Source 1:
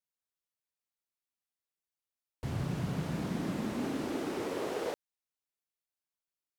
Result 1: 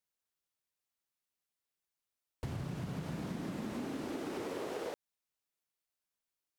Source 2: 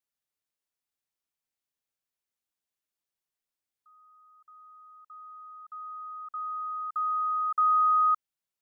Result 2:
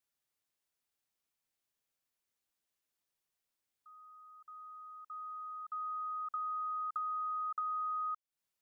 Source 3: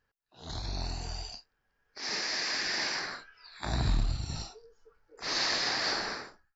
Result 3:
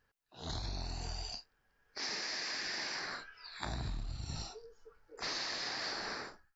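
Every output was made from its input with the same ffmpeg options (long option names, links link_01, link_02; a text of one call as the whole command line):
ffmpeg -i in.wav -af "acompressor=threshold=-38dB:ratio=10,volume=2dB" out.wav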